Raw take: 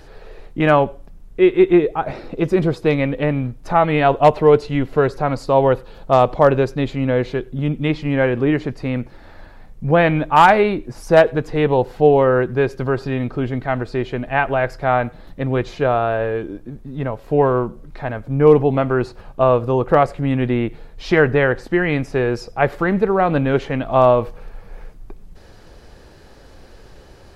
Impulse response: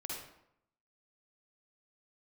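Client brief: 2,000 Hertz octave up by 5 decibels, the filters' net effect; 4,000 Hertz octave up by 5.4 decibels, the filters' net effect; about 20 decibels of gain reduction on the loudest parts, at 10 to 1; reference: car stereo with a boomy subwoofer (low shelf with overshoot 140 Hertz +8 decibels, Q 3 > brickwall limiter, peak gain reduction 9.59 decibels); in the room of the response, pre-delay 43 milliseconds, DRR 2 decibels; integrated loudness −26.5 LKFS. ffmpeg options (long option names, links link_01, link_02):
-filter_complex "[0:a]equalizer=frequency=2000:width_type=o:gain=5.5,equalizer=frequency=4000:width_type=o:gain=5,acompressor=threshold=-27dB:ratio=10,asplit=2[link_01][link_02];[1:a]atrim=start_sample=2205,adelay=43[link_03];[link_02][link_03]afir=irnorm=-1:irlink=0,volume=-2dB[link_04];[link_01][link_04]amix=inputs=2:normalize=0,lowshelf=frequency=140:width_type=q:width=3:gain=8,volume=6dB,alimiter=limit=-17dB:level=0:latency=1"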